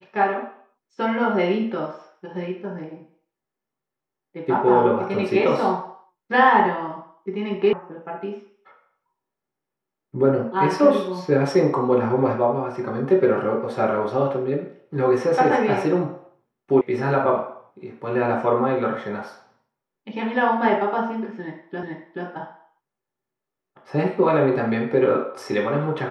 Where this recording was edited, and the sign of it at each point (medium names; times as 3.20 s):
7.73 s: sound stops dead
16.81 s: sound stops dead
21.83 s: repeat of the last 0.43 s